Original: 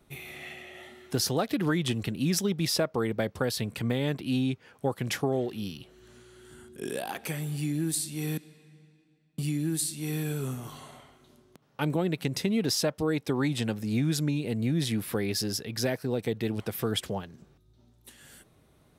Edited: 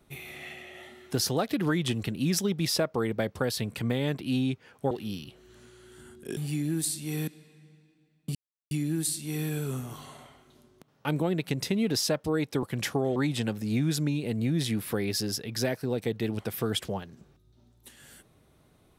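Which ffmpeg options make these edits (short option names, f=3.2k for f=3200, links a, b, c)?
-filter_complex "[0:a]asplit=6[a][b][c][d][e][f];[a]atrim=end=4.912[g];[b]atrim=start=5.438:end=6.902[h];[c]atrim=start=7.468:end=9.45,asetpts=PTS-STARTPTS,afade=t=out:st=1.978:d=0.004:c=hsin,apad=pad_dur=0.36[i];[d]atrim=start=9.45:end=13.372,asetpts=PTS-STARTPTS,afade=t=in:d=0.004:c=hsin[j];[e]atrim=start=4.908:end=5.442[k];[f]atrim=start=13.368[l];[g][h]acrossfade=d=0.004:c1=hsin:c2=hsin[m];[i][j]concat=n=2:v=0:a=1[n];[m][n]acrossfade=d=0.004:c1=hsin:c2=hsin[o];[o][k]acrossfade=d=0.004:c1=hsin:c2=hsin[p];[p][l]acrossfade=d=0.004:c1=hsin:c2=hsin"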